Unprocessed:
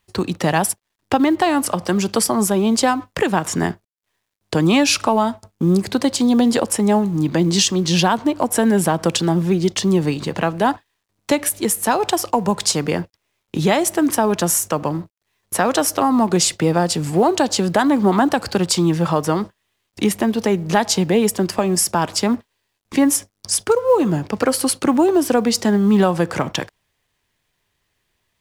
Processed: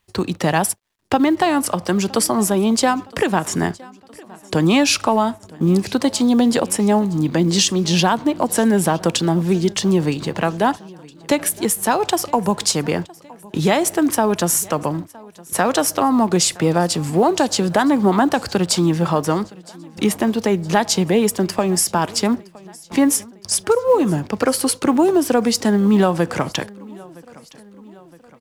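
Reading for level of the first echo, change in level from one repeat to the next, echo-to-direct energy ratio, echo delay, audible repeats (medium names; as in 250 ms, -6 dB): -23.0 dB, -5.5 dB, -21.5 dB, 965 ms, 3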